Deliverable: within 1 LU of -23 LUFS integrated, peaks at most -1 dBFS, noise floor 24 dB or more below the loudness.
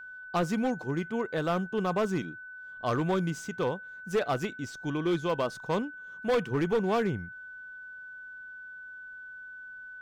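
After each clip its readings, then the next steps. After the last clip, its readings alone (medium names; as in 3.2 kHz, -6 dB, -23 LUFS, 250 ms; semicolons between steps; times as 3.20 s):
clipped samples 1.7%; clipping level -21.5 dBFS; steady tone 1.5 kHz; tone level -42 dBFS; loudness -30.5 LUFS; peak level -21.5 dBFS; loudness target -23.0 LUFS
-> clip repair -21.5 dBFS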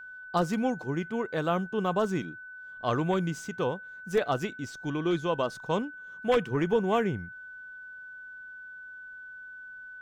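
clipped samples 0.0%; steady tone 1.5 kHz; tone level -42 dBFS
-> band-stop 1.5 kHz, Q 30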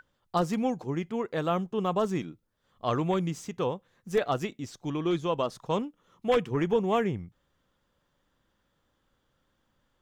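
steady tone not found; loudness -30.0 LUFS; peak level -13.0 dBFS; loudness target -23.0 LUFS
-> trim +7 dB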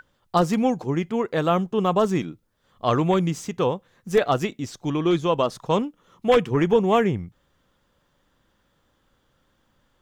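loudness -23.0 LUFS; peak level -6.0 dBFS; noise floor -68 dBFS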